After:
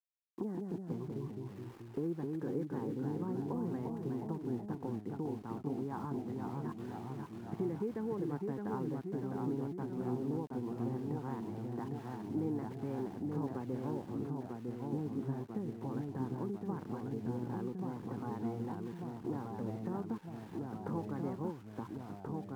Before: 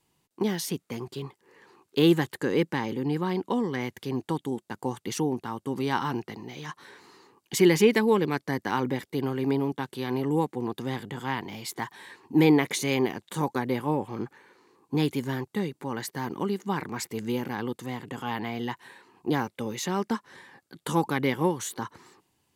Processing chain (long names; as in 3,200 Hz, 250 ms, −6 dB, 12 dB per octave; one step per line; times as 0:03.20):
inverse Chebyshev low-pass filter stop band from 6,000 Hz, stop band 70 dB
tilt shelving filter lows +5 dB, about 670 Hz
downward compressor 3 to 1, threshold −40 dBFS, peak gain reduction 20.5 dB
centre clipping without the shift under −55 dBFS
delay with pitch and tempo change per echo 141 ms, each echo −1 semitone, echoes 3
level −1.5 dB